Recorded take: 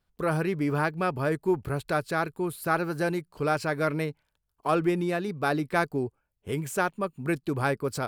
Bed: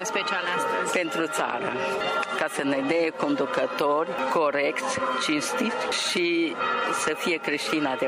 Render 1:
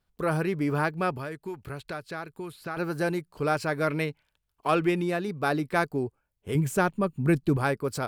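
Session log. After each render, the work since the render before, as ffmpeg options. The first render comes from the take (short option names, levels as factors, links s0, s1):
-filter_complex "[0:a]asettb=1/sr,asplit=3[s0][s1][s2];[s0]atrim=end=1.134[s3];[s1]atrim=start=1.13:end=2.77,asetpts=PTS-STARTPTS,afade=t=in:d=0.004:c=qsin,afade=t=out:st=1.636:d=0.004:c=qsin,acrossover=split=1500|5600[s4][s5][s6];[s4]acompressor=threshold=0.0158:ratio=4[s7];[s5]acompressor=threshold=0.00794:ratio=4[s8];[s6]acompressor=threshold=0.001:ratio=4[s9];[s7][s8][s9]amix=inputs=3:normalize=0[s10];[s2]atrim=start=2.766[s11];[s3][s10]acrossfade=d=0.004:c1=hsin:c2=qsin[s12];[s12][s11]acrossfade=d=0.004:c1=qsin:c2=hsin,asettb=1/sr,asplit=3[s13][s14][s15];[s13]atrim=end=3.904[s16];[s14]atrim=start=3.9:end=5.02,asetpts=PTS-STARTPTS,afade=t=in:d=0.004:c=qsin,afade=t=out:st=1.116:d=0.004:c=qsin,equalizer=f=2700:t=o:w=1.2:g=6[s17];[s15]atrim=start=5.016[s18];[s16][s17]acrossfade=d=0.004:c1=hsin:c2=qsin[s19];[s19][s18]acrossfade=d=0.004:c1=qsin:c2=hsin,asettb=1/sr,asplit=3[s20][s21][s22];[s20]atrim=end=6.554[s23];[s21]atrim=start=6.55:end=7.57,asetpts=PTS-STARTPTS,afade=t=in:d=0.004:c=qsin,afade=t=out:st=1.016:d=0.004:c=qsin,lowshelf=f=260:g=11.5[s24];[s22]atrim=start=7.566[s25];[s23][s24]acrossfade=d=0.004:c1=hsin:c2=qsin[s26];[s26][s25]acrossfade=d=0.004:c1=qsin:c2=hsin"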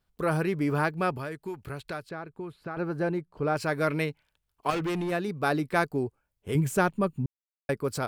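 -filter_complex "[0:a]asettb=1/sr,asplit=3[s0][s1][s2];[s0]atrim=end=2.094[s3];[s1]atrim=start=2.09:end=3.56,asetpts=PTS-STARTPTS,afade=t=in:d=0.004:c=qsin,afade=t=out:st=1.466:d=0.004:c=qsin,lowpass=f=1200:p=1[s4];[s2]atrim=start=3.556[s5];[s3][s4]acrossfade=d=0.004:c1=hsin:c2=qsin[s6];[s6][s5]acrossfade=d=0.004:c1=qsin:c2=hsin,asettb=1/sr,asplit=3[s7][s8][s9];[s7]atrim=end=4.704[s10];[s8]atrim=start=4.7:end=5.12,asetpts=PTS-STARTPTS,afade=t=in:d=0.004:c=qsin,afade=t=out:st=0.416:d=0.004:c=qsin,asoftclip=type=hard:threshold=0.0447[s11];[s9]atrim=start=5.116[s12];[s10][s11]acrossfade=d=0.004:c1=hsin:c2=qsin[s13];[s13][s12]acrossfade=d=0.004:c1=qsin:c2=hsin,asplit=3[s14][s15][s16];[s14]atrim=end=7.26,asetpts=PTS-STARTPTS,afade=t=out:st=7.256:d=0.004:c=hsin[s17];[s15]atrim=start=7.26:end=7.69,asetpts=PTS-STARTPTS,volume=0[s18];[s16]atrim=start=7.69,asetpts=PTS-STARTPTS,afade=t=in:d=0.004:c=hsin[s19];[s17][s18][s19]concat=n=3:v=0:a=1"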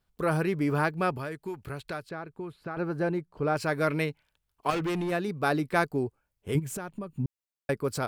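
-filter_complex "[0:a]asplit=3[s0][s1][s2];[s0]afade=t=out:st=6.58:d=0.02[s3];[s1]acompressor=threshold=0.0251:ratio=12:attack=3.2:release=140:knee=1:detection=peak,afade=t=in:st=6.58:d=0.02,afade=t=out:st=7.18:d=0.02[s4];[s2]afade=t=in:st=7.18:d=0.02[s5];[s3][s4][s5]amix=inputs=3:normalize=0"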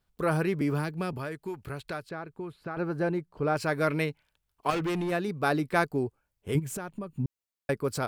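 -filter_complex "[0:a]asettb=1/sr,asplit=3[s0][s1][s2];[s0]atrim=end=0.614[s3];[s1]atrim=start=0.61:end=1.13,asetpts=PTS-STARTPTS,afade=t=in:d=0.004:c=qsin,afade=t=out:st=0.516:d=0.004:c=qsin,acrossover=split=340|3000[s4][s5][s6];[s5]acompressor=threshold=0.0251:ratio=6:attack=3.2:release=140:knee=2.83:detection=peak[s7];[s4][s7][s6]amix=inputs=3:normalize=0[s8];[s2]atrim=start=1.126[s9];[s3][s8]acrossfade=d=0.004:c1=hsin:c2=qsin[s10];[s10][s9]acrossfade=d=0.004:c1=qsin:c2=hsin"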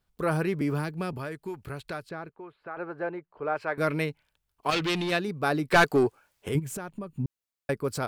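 -filter_complex "[0:a]asettb=1/sr,asplit=3[s0][s1][s2];[s0]atrim=end=2.294[s3];[s1]atrim=start=2.29:end=3.78,asetpts=PTS-STARTPTS,afade=t=in:d=0.004:c=qsin,afade=t=out:st=1.486:d=0.004:c=qsin,acrossover=split=400 2900:gain=0.178 1 0.0794[s4][s5][s6];[s4][s5][s6]amix=inputs=3:normalize=0[s7];[s2]atrim=start=3.776[s8];[s3][s7]acrossfade=d=0.004:c1=hsin:c2=qsin[s9];[s9][s8]acrossfade=d=0.004:c1=qsin:c2=hsin,asplit=3[s10][s11][s12];[s10]afade=t=out:st=4.71:d=0.02[s13];[s11]equalizer=f=3900:t=o:w=1.7:g=14,afade=t=in:st=4.71:d=0.02,afade=t=out:st=5.18:d=0.02[s14];[s12]afade=t=in:st=5.18:d=0.02[s15];[s13][s14][s15]amix=inputs=3:normalize=0,asettb=1/sr,asplit=3[s16][s17][s18];[s16]atrim=end=5.714[s19];[s17]atrim=start=5.71:end=6.49,asetpts=PTS-STARTPTS,afade=t=in:d=0.004:c=qsin,afade=t=out:st=0.776:d=0.004:c=qsin,asplit=2[s20][s21];[s21]highpass=f=720:p=1,volume=12.6,asoftclip=type=tanh:threshold=0.316[s22];[s20][s22]amix=inputs=2:normalize=0,lowpass=f=7700:p=1,volume=0.501[s23];[s18]atrim=start=6.486[s24];[s19][s23]acrossfade=d=0.004:c1=hsin:c2=qsin[s25];[s25][s24]acrossfade=d=0.004:c1=qsin:c2=hsin"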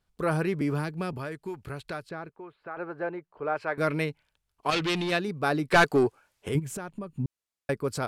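-af "lowpass=12000"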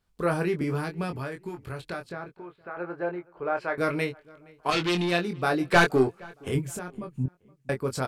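-filter_complex "[0:a]asplit=2[s0][s1];[s1]adelay=23,volume=0.531[s2];[s0][s2]amix=inputs=2:normalize=0,asplit=2[s3][s4];[s4]adelay=469,lowpass=f=2300:p=1,volume=0.0631,asplit=2[s5][s6];[s6]adelay=469,lowpass=f=2300:p=1,volume=0.37[s7];[s3][s5][s7]amix=inputs=3:normalize=0"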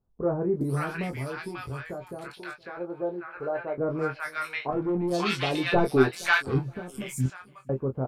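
-filter_complex "[0:a]asplit=2[s0][s1];[s1]adelay=15,volume=0.398[s2];[s0][s2]amix=inputs=2:normalize=0,acrossover=split=950|4800[s3][s4][s5];[s5]adelay=420[s6];[s4]adelay=540[s7];[s3][s7][s6]amix=inputs=3:normalize=0"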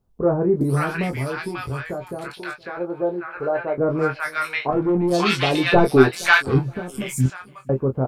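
-af "volume=2.37,alimiter=limit=0.891:level=0:latency=1"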